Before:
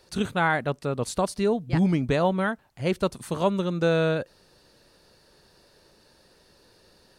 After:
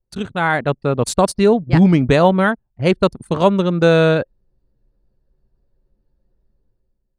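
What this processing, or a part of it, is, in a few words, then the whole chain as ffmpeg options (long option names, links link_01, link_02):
voice memo with heavy noise removal: -af "anlmdn=2.51,dynaudnorm=framelen=120:gausssize=9:maxgain=11dB,volume=1dB"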